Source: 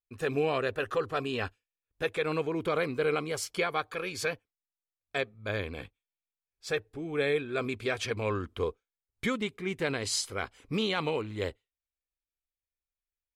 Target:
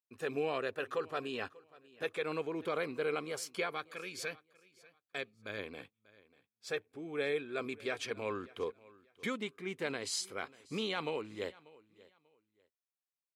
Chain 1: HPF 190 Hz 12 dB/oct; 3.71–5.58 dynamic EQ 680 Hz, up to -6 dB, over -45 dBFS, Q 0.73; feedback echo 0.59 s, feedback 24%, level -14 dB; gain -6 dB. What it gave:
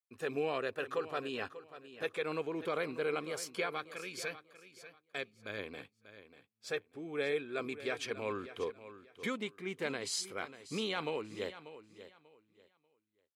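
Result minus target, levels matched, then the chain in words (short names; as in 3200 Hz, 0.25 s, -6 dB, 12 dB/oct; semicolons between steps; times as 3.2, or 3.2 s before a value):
echo-to-direct +8 dB
HPF 190 Hz 12 dB/oct; 3.71–5.58 dynamic EQ 680 Hz, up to -6 dB, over -45 dBFS, Q 0.73; feedback echo 0.59 s, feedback 24%, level -22 dB; gain -6 dB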